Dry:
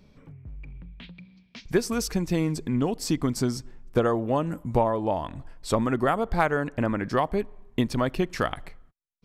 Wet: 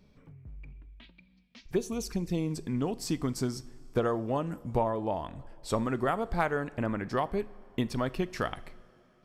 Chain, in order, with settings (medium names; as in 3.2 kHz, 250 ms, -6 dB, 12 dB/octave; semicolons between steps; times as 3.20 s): 0.72–2.51 s: touch-sensitive flanger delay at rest 4.5 ms, full sweep at -22.5 dBFS; two-slope reverb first 0.42 s, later 4 s, from -17 dB, DRR 15 dB; trim -5.5 dB